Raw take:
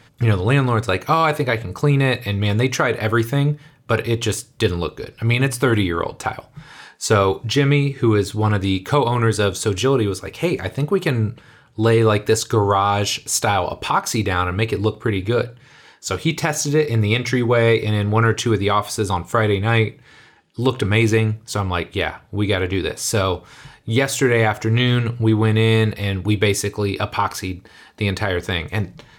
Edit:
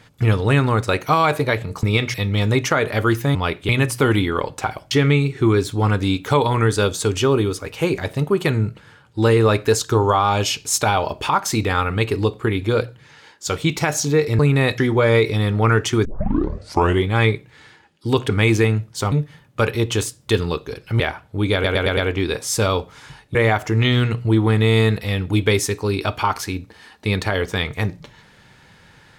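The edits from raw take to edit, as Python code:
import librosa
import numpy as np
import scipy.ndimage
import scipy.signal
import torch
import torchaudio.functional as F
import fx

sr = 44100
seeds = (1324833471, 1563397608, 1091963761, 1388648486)

y = fx.edit(x, sr, fx.swap(start_s=1.83, length_s=0.39, other_s=17.0, other_length_s=0.31),
    fx.swap(start_s=3.43, length_s=1.88, other_s=21.65, other_length_s=0.34),
    fx.cut(start_s=6.53, length_s=0.99),
    fx.tape_start(start_s=18.58, length_s=1.02),
    fx.stutter(start_s=22.52, slice_s=0.11, count=5),
    fx.cut(start_s=23.9, length_s=0.4), tone=tone)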